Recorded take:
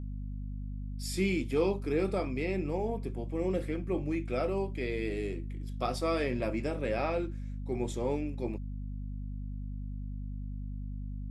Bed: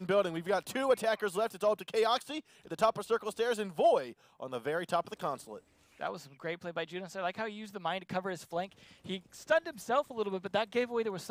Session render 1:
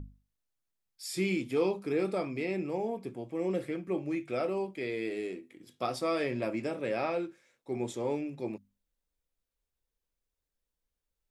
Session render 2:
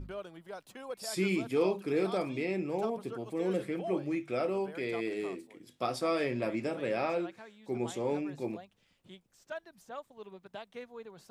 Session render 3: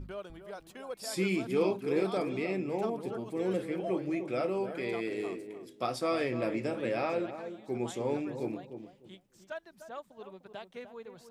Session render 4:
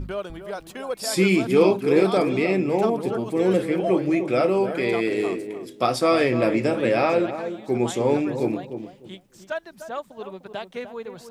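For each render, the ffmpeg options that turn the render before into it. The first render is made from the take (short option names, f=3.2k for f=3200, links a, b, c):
-af "bandreject=f=50:t=h:w=6,bandreject=f=100:t=h:w=6,bandreject=f=150:t=h:w=6,bandreject=f=200:t=h:w=6,bandreject=f=250:t=h:w=6"
-filter_complex "[1:a]volume=-13.5dB[a];[0:a][a]amix=inputs=2:normalize=0"
-filter_complex "[0:a]asplit=2[a][b];[b]adelay=300,lowpass=f=870:p=1,volume=-8dB,asplit=2[c][d];[d]adelay=300,lowpass=f=870:p=1,volume=0.22,asplit=2[e][f];[f]adelay=300,lowpass=f=870:p=1,volume=0.22[g];[a][c][e][g]amix=inputs=4:normalize=0"
-af "volume=11.5dB"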